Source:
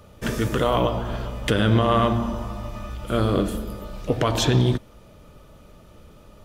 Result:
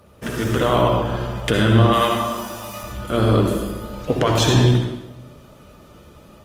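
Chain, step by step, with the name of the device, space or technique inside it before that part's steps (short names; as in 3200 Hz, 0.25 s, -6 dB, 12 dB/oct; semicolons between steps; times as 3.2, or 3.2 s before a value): HPF 94 Hz 6 dB/oct; 1.93–2.83 RIAA curve recording; speakerphone in a meeting room (reverb RT60 0.90 s, pre-delay 57 ms, DRR 1.5 dB; AGC gain up to 3 dB; Opus 24 kbps 48000 Hz)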